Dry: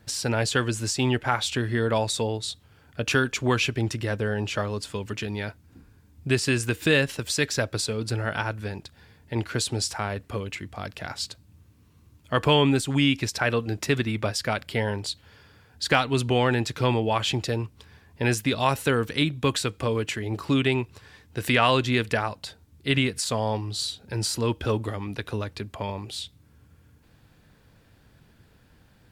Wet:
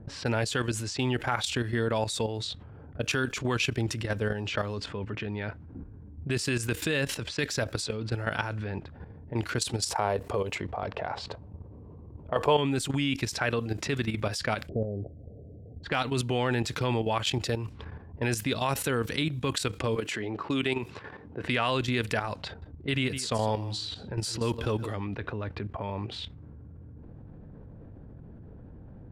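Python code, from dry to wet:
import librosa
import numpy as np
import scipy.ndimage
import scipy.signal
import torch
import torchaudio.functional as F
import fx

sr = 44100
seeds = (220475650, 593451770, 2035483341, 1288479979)

y = fx.band_shelf(x, sr, hz=650.0, db=9.5, octaves=1.7, at=(9.85, 12.56), fade=0.02)
y = fx.steep_lowpass(y, sr, hz=710.0, slope=96, at=(14.67, 15.83), fade=0.02)
y = fx.bessel_highpass(y, sr, hz=200.0, order=2, at=(19.96, 21.44))
y = fx.echo_single(y, sr, ms=159, db=-15.5, at=(22.46, 24.89))
y = fx.level_steps(y, sr, step_db=13)
y = fx.env_lowpass(y, sr, base_hz=510.0, full_db=-28.5)
y = fx.env_flatten(y, sr, amount_pct=50)
y = y * librosa.db_to_amplitude(-7.5)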